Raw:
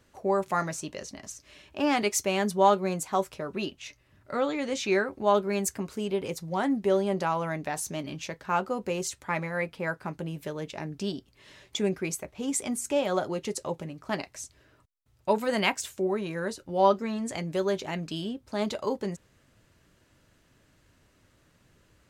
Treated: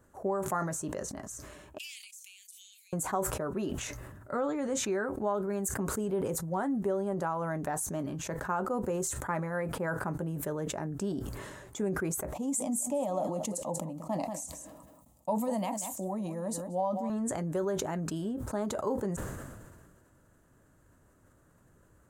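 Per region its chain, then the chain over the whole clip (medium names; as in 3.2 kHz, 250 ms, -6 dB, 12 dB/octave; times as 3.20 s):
1.78–2.93 s: steep high-pass 2.4 kHz 72 dB/octave + compression 10:1, threshold -45 dBFS
12.33–17.10 s: high-pass 91 Hz + static phaser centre 400 Hz, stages 6 + delay 186 ms -15.5 dB
whole clip: compression, threshold -28 dBFS; high-order bell 3.4 kHz -14.5 dB; decay stretcher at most 33 dB/s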